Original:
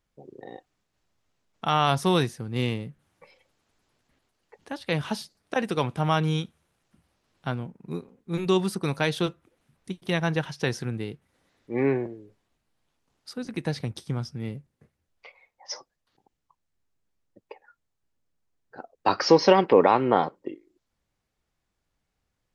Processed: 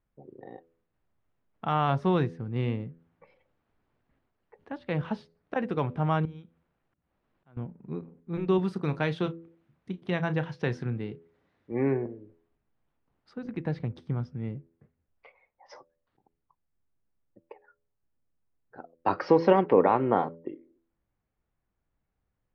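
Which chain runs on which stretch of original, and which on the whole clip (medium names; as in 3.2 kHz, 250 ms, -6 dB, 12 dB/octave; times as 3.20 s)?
6.25–7.57 s: peaking EQ 89 Hz -5.5 dB 1.1 oct + compression 2:1, threshold -53 dBFS + slow attack 220 ms
8.58–11.72 s: high-pass 60 Hz + treble shelf 3.5 kHz +8 dB + doubling 33 ms -14 dB
whole clip: low-pass 2 kHz 12 dB/octave; bass shelf 320 Hz +4 dB; de-hum 83.15 Hz, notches 7; trim -4 dB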